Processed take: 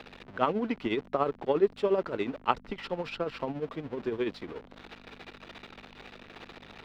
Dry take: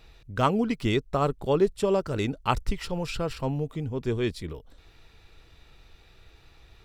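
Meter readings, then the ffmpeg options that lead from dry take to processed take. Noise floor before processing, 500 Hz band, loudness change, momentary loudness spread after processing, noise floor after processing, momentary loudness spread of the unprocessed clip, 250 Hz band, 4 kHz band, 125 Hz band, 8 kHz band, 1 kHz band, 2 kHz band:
-56 dBFS, -2.5 dB, -3.5 dB, 21 LU, -54 dBFS, 8 LU, -5.0 dB, -5.5 dB, -14.0 dB, under -15 dB, -2.5 dB, -2.5 dB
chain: -filter_complex "[0:a]aeval=exprs='val(0)+0.5*0.02*sgn(val(0))':c=same,tremolo=f=14:d=0.62,highshelf=f=4.9k:g=-9,aeval=exprs='val(0)+0.00891*(sin(2*PI*50*n/s)+sin(2*PI*2*50*n/s)/2+sin(2*PI*3*50*n/s)/3+sin(2*PI*4*50*n/s)/4+sin(2*PI*5*50*n/s)/5)':c=same,acrossover=split=220 4400:gain=0.0891 1 0.0891[a][b][c];[a][b][c]amix=inputs=3:normalize=0"

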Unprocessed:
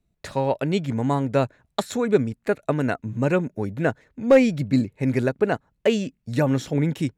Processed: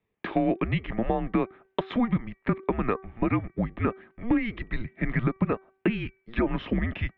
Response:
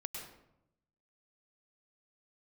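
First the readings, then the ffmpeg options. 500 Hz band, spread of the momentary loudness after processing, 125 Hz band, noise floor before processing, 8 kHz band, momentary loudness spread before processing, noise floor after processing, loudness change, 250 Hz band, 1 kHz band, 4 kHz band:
-9.5 dB, 6 LU, -5.0 dB, -73 dBFS, under -35 dB, 8 LU, -74 dBFS, -5.5 dB, -3.5 dB, -3.5 dB, -7.5 dB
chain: -af "bandreject=f=1.7k:w=9.2,alimiter=limit=-13dB:level=0:latency=1:release=105,highpass=f=370:t=q:w=0.5412,highpass=f=370:t=q:w=1.307,lowpass=f=3.1k:t=q:w=0.5176,lowpass=f=3.1k:t=q:w=0.7071,lowpass=f=3.1k:t=q:w=1.932,afreqshift=-240,acompressor=threshold=-28dB:ratio=4,bandreject=f=383.5:t=h:w=4,bandreject=f=767:t=h:w=4,bandreject=f=1.1505k:t=h:w=4,bandreject=f=1.534k:t=h:w=4,bandreject=f=1.9175k:t=h:w=4,bandreject=f=2.301k:t=h:w=4,volume=6.5dB"

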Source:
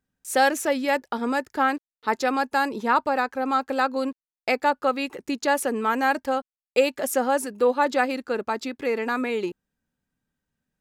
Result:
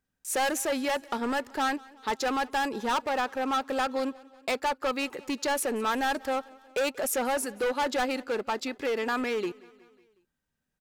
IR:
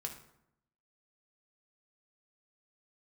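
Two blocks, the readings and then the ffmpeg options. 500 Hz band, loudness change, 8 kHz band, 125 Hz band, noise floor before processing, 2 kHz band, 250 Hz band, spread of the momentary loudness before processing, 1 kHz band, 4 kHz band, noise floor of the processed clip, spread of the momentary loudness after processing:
-5.5 dB, -5.0 dB, 0.0 dB, n/a, under -85 dBFS, -5.5 dB, -5.0 dB, 7 LU, -5.5 dB, -0.5 dB, -83 dBFS, 5 LU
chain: -af "asoftclip=type=hard:threshold=-23dB,equalizer=f=180:t=o:w=2.4:g=-4,aecho=1:1:183|366|549|732:0.0668|0.0394|0.0233|0.0137"

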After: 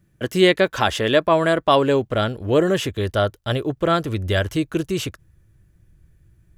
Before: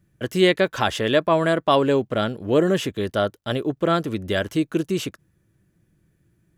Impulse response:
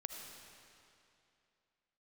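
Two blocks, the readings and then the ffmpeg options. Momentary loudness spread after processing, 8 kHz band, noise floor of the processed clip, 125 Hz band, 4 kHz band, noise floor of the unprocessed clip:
8 LU, +2.5 dB, -60 dBFS, +3.5 dB, +2.5 dB, -67 dBFS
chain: -af "asubboost=boost=9:cutoff=72,volume=2.5dB"

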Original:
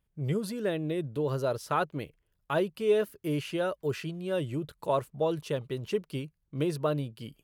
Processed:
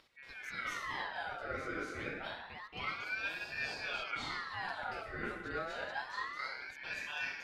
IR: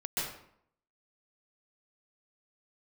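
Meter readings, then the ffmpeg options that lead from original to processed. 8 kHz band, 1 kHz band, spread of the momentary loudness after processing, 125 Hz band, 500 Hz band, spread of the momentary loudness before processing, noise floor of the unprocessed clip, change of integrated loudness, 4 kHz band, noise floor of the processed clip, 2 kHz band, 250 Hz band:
-7.5 dB, -5.0 dB, 6 LU, -20.5 dB, -17.5 dB, 7 LU, -77 dBFS, -8.5 dB, -1.5 dB, -53 dBFS, +5.0 dB, -17.0 dB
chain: -filter_complex "[0:a]lowpass=1.6k,aderivative,asplit=2[a][b];[b]acompressor=mode=upward:threshold=-53dB:ratio=2.5,volume=-1dB[c];[a][c]amix=inputs=2:normalize=0,alimiter=level_in=14dB:limit=-24dB:level=0:latency=1,volume=-14dB,areverse,acompressor=threshold=-56dB:ratio=6,areverse[d];[1:a]atrim=start_sample=2205,asetrate=23373,aresample=44100[e];[d][e]afir=irnorm=-1:irlink=0,aeval=exprs='val(0)*sin(2*PI*1500*n/s+1500*0.4/0.28*sin(2*PI*0.28*n/s))':c=same,volume=11.5dB"

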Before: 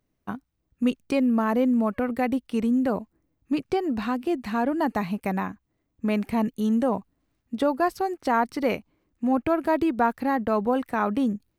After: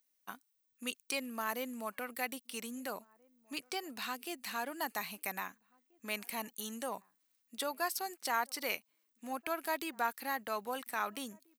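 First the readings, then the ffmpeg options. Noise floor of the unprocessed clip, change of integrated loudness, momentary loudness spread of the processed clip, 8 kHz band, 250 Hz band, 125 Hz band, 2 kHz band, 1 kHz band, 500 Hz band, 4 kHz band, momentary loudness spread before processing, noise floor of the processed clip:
-76 dBFS, -13.5 dB, 10 LU, n/a, -22.5 dB, under -20 dB, -5.0 dB, -11.0 dB, -16.0 dB, +0.5 dB, 8 LU, -78 dBFS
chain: -filter_complex "[0:a]aderivative,asplit=2[a][b];[b]adelay=1633,volume=-27dB,highshelf=f=4k:g=-36.7[c];[a][c]amix=inputs=2:normalize=0,volume=6.5dB"

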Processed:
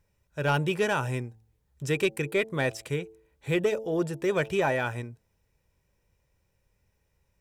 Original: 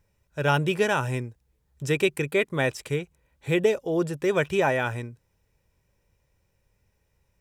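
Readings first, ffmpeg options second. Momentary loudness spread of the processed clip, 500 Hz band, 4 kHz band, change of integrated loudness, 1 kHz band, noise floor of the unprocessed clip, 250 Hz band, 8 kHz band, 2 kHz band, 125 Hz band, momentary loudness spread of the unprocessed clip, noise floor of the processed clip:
14 LU, -3.0 dB, -3.0 dB, -3.0 dB, -3.0 dB, -72 dBFS, -2.5 dB, -2.5 dB, -3.0 dB, -2.5 dB, 14 LU, -74 dBFS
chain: -af "asoftclip=type=tanh:threshold=-11.5dB,bandreject=f=110.6:t=h:w=4,bandreject=f=221.2:t=h:w=4,bandreject=f=331.8:t=h:w=4,bandreject=f=442.4:t=h:w=4,bandreject=f=553:t=h:w=4,bandreject=f=663.6:t=h:w=4,bandreject=f=774.2:t=h:w=4,bandreject=f=884.8:t=h:w=4,volume=-2dB"

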